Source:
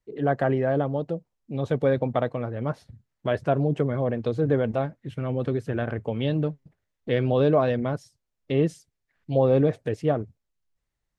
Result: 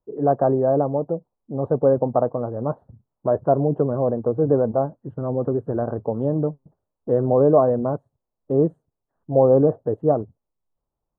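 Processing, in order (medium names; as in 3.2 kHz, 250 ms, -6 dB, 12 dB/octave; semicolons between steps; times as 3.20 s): inverse Chebyshev low-pass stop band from 2.1 kHz, stop band 40 dB; bass shelf 220 Hz -9 dB; trim +7 dB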